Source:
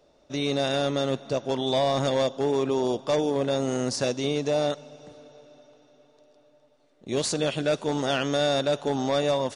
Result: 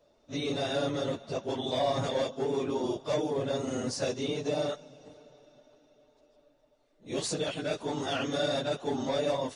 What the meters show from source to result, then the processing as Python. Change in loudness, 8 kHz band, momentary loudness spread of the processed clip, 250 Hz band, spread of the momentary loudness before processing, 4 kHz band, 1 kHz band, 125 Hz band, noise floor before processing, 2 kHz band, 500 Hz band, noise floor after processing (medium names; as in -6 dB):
-6.0 dB, -5.5 dB, 5 LU, -5.5 dB, 4 LU, -5.5 dB, -5.5 dB, -6.0 dB, -61 dBFS, -5.5 dB, -6.0 dB, -67 dBFS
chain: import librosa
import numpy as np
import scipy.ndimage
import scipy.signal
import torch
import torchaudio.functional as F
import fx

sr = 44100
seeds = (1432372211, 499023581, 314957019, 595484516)

y = fx.phase_scramble(x, sr, seeds[0], window_ms=50)
y = y * librosa.db_to_amplitude(-5.5)